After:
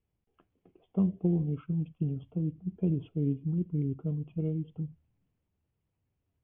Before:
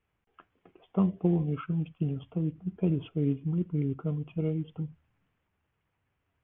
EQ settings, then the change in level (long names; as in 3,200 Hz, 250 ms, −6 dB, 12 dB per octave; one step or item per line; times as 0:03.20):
high-frequency loss of the air 170 metres
parametric band 1,500 Hz −14.5 dB 2.2 octaves
0.0 dB